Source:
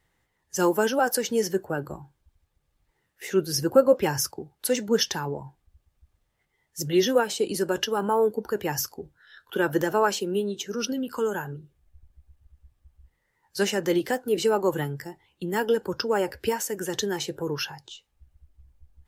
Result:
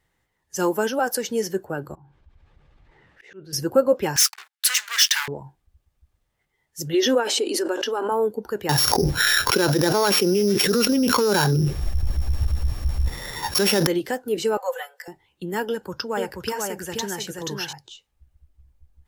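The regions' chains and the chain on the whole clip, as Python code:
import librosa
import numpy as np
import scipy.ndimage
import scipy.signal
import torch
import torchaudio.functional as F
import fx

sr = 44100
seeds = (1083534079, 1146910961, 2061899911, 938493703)

y = fx.chain(x, sr, fx.lowpass(hz=3000.0, slope=12),
    fx.auto_swell(attack_ms=559.0),
    fx.env_flatten(amount_pct=50), at=(1.95, 3.53))
y = fx.chain(y, sr, fx.median_filter(points=3),
    fx.leveller(passes=5),
    fx.highpass(hz=1500.0, slope=24), at=(4.16, 5.28))
y = fx.chain(y, sr, fx.brickwall_highpass(low_hz=230.0),
    fx.high_shelf(hz=10000.0, db=-11.5),
    fx.pre_swell(db_per_s=34.0), at=(6.94, 8.12))
y = fx.chain(y, sr, fx.sample_sort(block=8),
    fx.env_flatten(amount_pct=100), at=(8.69, 13.87))
y = fx.chain(y, sr, fx.cheby_ripple_highpass(hz=500.0, ripple_db=3),
    fx.comb(ms=4.0, depth=0.81), at=(14.57, 15.08))
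y = fx.chain(y, sr, fx.peak_eq(hz=400.0, db=-5.5, octaves=0.92),
    fx.echo_single(ms=481, db=-3.5), at=(15.69, 17.73))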